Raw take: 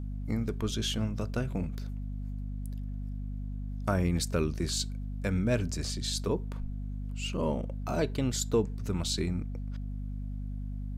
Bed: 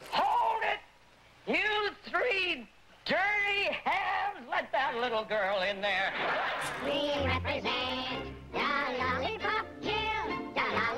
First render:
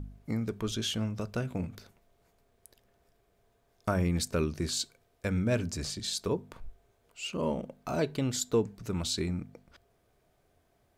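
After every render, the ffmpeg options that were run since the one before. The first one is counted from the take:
-af "bandreject=f=50:t=h:w=4,bandreject=f=100:t=h:w=4,bandreject=f=150:t=h:w=4,bandreject=f=200:t=h:w=4,bandreject=f=250:t=h:w=4"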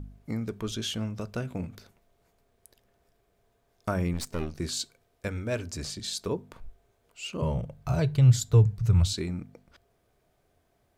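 -filter_complex "[0:a]asettb=1/sr,asplit=3[s0][s1][s2];[s0]atrim=end=4.134[s3];[s1]atrim=start=4.13:end=4.6,asetpts=PTS-STARTPTS,afade=t=in:d=0.004:c=qsin,afade=t=out:st=0.466:d=0.004:c=qsin,aeval=exprs='if(lt(val(0),0),0.251*val(0),val(0))':c=same[s4];[s2]atrim=start=4.596[s5];[s3][s4]acrossfade=d=0.004:c1=hsin:c2=qsin[s6];[s6][s5]acrossfade=d=0.004:c1=qsin:c2=hsin,asettb=1/sr,asplit=3[s7][s8][s9];[s7]atrim=end=5.284[s10];[s8]atrim=start=5.28:end=5.74,asetpts=PTS-STARTPTS,afade=t=in:d=0.004:c=qsin,afade=t=out:st=0.456:d=0.004:c=qsin,equalizer=f=180:t=o:w=0.77:g=-12.5[s11];[s9]atrim=start=5.736[s12];[s10][s11]acrossfade=d=0.004:c1=hsin:c2=qsin[s13];[s13][s12]acrossfade=d=0.004:c1=qsin:c2=hsin,asettb=1/sr,asplit=3[s14][s15][s16];[s14]atrim=end=7.424[s17];[s15]atrim=start=7.42:end=9.13,asetpts=PTS-STARTPTS,afade=t=in:d=0.004:c=qsin,afade=t=out:st=1.706:d=0.004:c=qsin,lowshelf=f=170:t=q:w=3:g=12.5[s18];[s16]atrim=start=9.126[s19];[s17][s18]acrossfade=d=0.004:c1=hsin:c2=qsin[s20];[s20][s19]acrossfade=d=0.004:c1=qsin:c2=hsin"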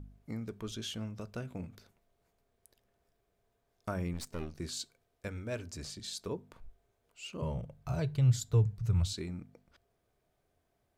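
-af "volume=0.422"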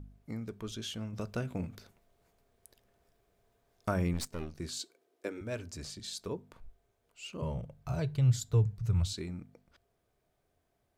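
-filter_complex "[0:a]asettb=1/sr,asplit=3[s0][s1][s2];[s0]atrim=end=4.794[s3];[s1]atrim=start=4.79:end=5.41,asetpts=PTS-STARTPTS,afade=t=in:d=0.004:c=qsin,afade=t=out:st=0.616:d=0.004:c=qsin,highpass=f=340:t=q:w=4[s4];[s2]atrim=start=5.406[s5];[s3][s4]acrossfade=d=0.004:c1=hsin:c2=qsin[s6];[s6][s5]acrossfade=d=0.004:c1=qsin:c2=hsin,asplit=3[s7][s8][s9];[s7]atrim=end=1.132[s10];[s8]atrim=start=1.128:end=4.272,asetpts=PTS-STARTPTS,volume=1.78[s11];[s9]atrim=start=4.268[s12];[s10][s11]acrossfade=d=0.004:c1=hsin:c2=hsin[s13];[s13][s12]acrossfade=d=0.004:c1=hsin:c2=hsin"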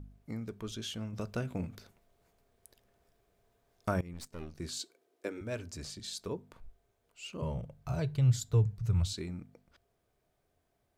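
-filter_complex "[0:a]asplit=2[s0][s1];[s0]atrim=end=4.01,asetpts=PTS-STARTPTS,afade=t=out:st=4.006:d=0.004:c=hsin:silence=0.0891251[s2];[s1]atrim=start=4.01,asetpts=PTS-STARTPTS,afade=t=in:d=0.67:silence=0.0891251[s3];[s2][s3]concat=n=2:v=0:a=1"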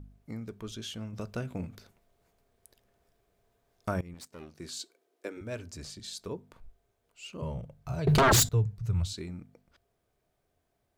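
-filter_complex "[0:a]asettb=1/sr,asplit=3[s0][s1][s2];[s0]atrim=end=4.144[s3];[s1]atrim=start=4.14:end=5.37,asetpts=PTS-STARTPTS,afade=t=in:d=0.004:c=qsin,afade=t=out:st=1.226:d=0.004:c=qsin,highpass=f=210:p=1[s4];[s2]atrim=start=5.366[s5];[s3][s4]acrossfade=d=0.004:c1=hsin:c2=qsin[s6];[s6][s5]acrossfade=d=0.004:c1=qsin:c2=hsin,asettb=1/sr,asplit=3[s7][s8][s9];[s7]atrim=end=8.074[s10];[s8]atrim=start=8.07:end=8.49,asetpts=PTS-STARTPTS,afade=t=in:d=0.004:c=qsin,afade=t=out:st=0.416:d=0.004:c=qsin,aeval=exprs='0.133*sin(PI/2*8.91*val(0)/0.133)':c=same[s11];[s9]atrim=start=8.486[s12];[s10][s11]acrossfade=d=0.004:c1=hsin:c2=qsin[s13];[s13][s12]acrossfade=d=0.004:c1=qsin:c2=hsin"

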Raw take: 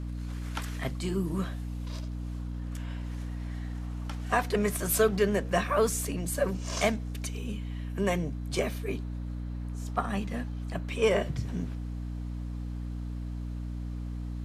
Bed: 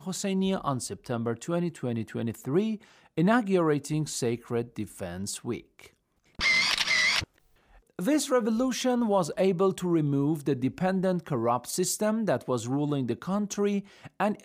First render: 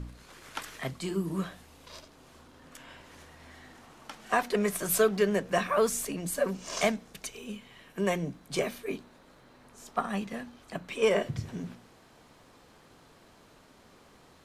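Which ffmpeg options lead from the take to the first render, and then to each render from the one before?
-af "bandreject=f=60:t=h:w=4,bandreject=f=120:t=h:w=4,bandreject=f=180:t=h:w=4,bandreject=f=240:t=h:w=4,bandreject=f=300:t=h:w=4"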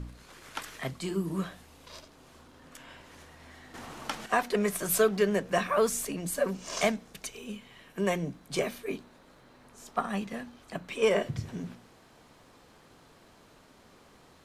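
-filter_complex "[0:a]asplit=3[s0][s1][s2];[s0]atrim=end=3.742[s3];[s1]atrim=start=3.738:end=4.262,asetpts=PTS-STARTPTS,volume=2.99[s4];[s2]atrim=start=4.258[s5];[s3][s4]acrossfade=d=0.004:c1=hsin:c2=hsin[s6];[s6][s5]acrossfade=d=0.004:c1=hsin:c2=hsin"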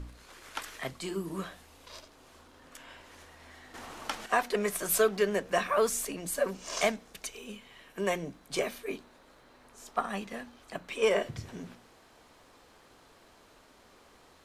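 -af "equalizer=f=150:t=o:w=1.5:g=-8"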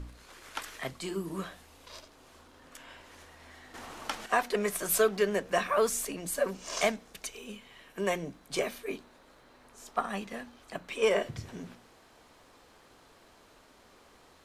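-af anull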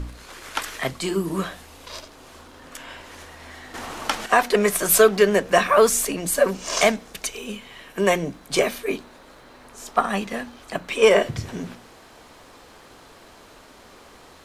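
-af "volume=3.55,alimiter=limit=0.708:level=0:latency=1"

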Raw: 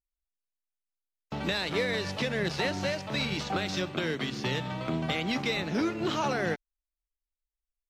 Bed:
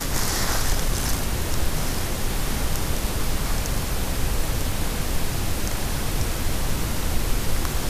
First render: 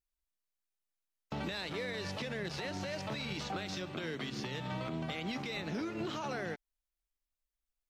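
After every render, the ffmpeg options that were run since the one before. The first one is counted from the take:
-af "acompressor=threshold=0.0316:ratio=6,alimiter=level_in=1.78:limit=0.0631:level=0:latency=1:release=187,volume=0.562"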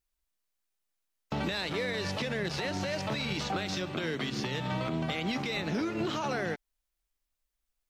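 -af "volume=2"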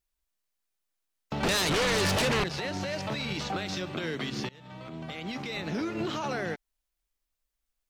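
-filter_complex "[0:a]asettb=1/sr,asplit=3[s0][s1][s2];[s0]atrim=end=1.434[s3];[s1]atrim=start=1.43:end=2.44,asetpts=PTS-STARTPTS,afade=t=in:d=0.004:c=qsin,afade=t=out:st=1.006:d=0.004:c=qsin,aeval=exprs='0.075*sin(PI/2*2.82*val(0)/0.075)':c=same[s4];[s2]atrim=start=2.436[s5];[s3][s4]acrossfade=d=0.004:c1=hsin:c2=qsin[s6];[s6][s5]acrossfade=d=0.004:c1=qsin:c2=hsin,asplit=2[s7][s8];[s7]atrim=end=4.49,asetpts=PTS-STARTPTS,afade=t=out:st=4.486:d=0.004:c=hsin:silence=0.0707946[s9];[s8]atrim=start=4.49,asetpts=PTS-STARTPTS,afade=t=in:d=1.36:silence=0.0707946[s10];[s9][s10]concat=n=2:v=0:a=1"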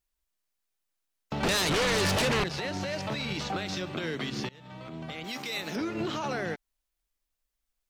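-filter_complex "[0:a]asettb=1/sr,asplit=3[s0][s1][s2];[s0]atrim=end=5.244[s3];[s1]atrim=start=5.24:end=5.76,asetpts=PTS-STARTPTS,afade=t=in:d=0.004:c=qsin,afade=t=out:st=0.516:d=0.004:c=qsin,aemphasis=mode=production:type=bsi[s4];[s2]atrim=start=5.756[s5];[s3][s4]acrossfade=d=0.004:c1=hsin:c2=qsin[s6];[s6][s5]acrossfade=d=0.004:c1=qsin:c2=hsin"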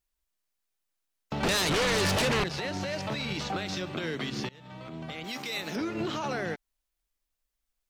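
-af anull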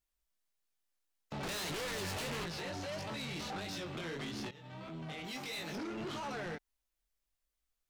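-af "flanger=delay=17.5:depth=6.2:speed=1.6,asoftclip=type=tanh:threshold=0.0133"

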